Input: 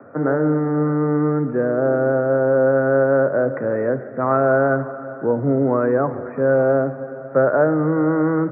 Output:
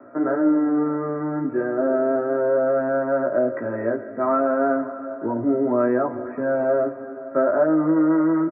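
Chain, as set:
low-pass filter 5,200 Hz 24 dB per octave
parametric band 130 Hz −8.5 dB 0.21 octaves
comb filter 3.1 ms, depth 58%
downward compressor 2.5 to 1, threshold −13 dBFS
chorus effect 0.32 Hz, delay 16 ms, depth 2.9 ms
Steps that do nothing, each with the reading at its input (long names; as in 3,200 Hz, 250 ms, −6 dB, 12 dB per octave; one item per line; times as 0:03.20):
low-pass filter 5,200 Hz: nothing at its input above 1,700 Hz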